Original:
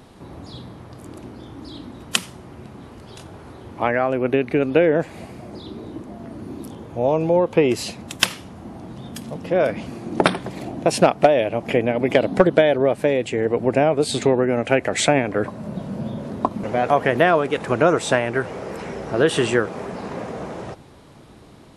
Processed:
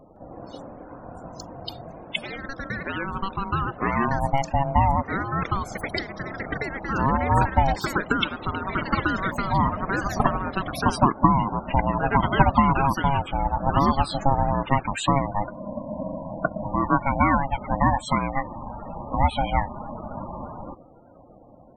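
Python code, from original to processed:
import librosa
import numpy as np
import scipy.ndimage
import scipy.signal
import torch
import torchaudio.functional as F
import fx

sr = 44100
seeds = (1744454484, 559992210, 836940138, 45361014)

y = x * np.sin(2.0 * np.pi * 410.0 * np.arange(len(x)) / sr)
y = fx.spec_topn(y, sr, count=32)
y = fx.echo_pitch(y, sr, ms=162, semitones=6, count=2, db_per_echo=-6.0)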